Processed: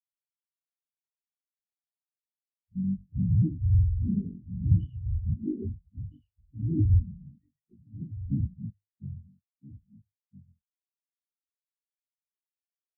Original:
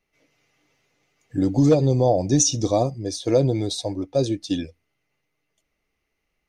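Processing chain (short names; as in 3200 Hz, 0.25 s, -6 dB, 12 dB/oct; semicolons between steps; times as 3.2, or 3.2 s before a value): cycle switcher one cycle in 3, inverted; HPF 120 Hz 12 dB/oct; tilt -2.5 dB/oct; notches 50/100/150/200/250/300 Hz; soft clip -14.5 dBFS, distortion -11 dB; echo 0.658 s -3.5 dB; speed mistake 15 ips tape played at 7.5 ips; spectral expander 4:1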